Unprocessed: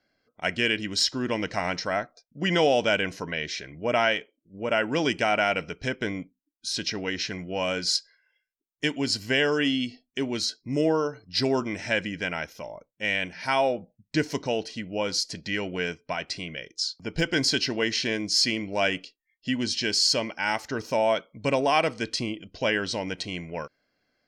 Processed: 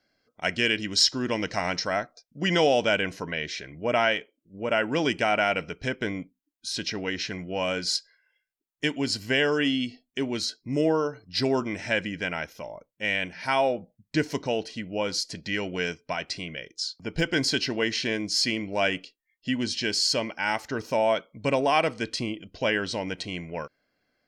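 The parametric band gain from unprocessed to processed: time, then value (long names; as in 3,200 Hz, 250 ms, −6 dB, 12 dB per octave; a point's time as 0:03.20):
parametric band 5,500 Hz 0.91 octaves
0:02.53 +4 dB
0:02.96 −2.5 dB
0:15.42 −2.5 dB
0:15.77 +6.5 dB
0:16.56 −3 dB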